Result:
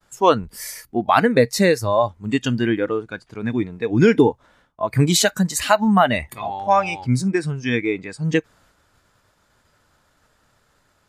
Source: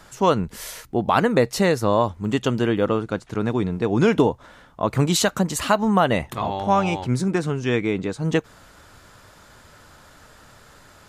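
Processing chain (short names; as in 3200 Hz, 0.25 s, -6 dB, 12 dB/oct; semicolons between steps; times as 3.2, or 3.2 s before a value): spectral noise reduction 13 dB; expander -57 dBFS; gain +4 dB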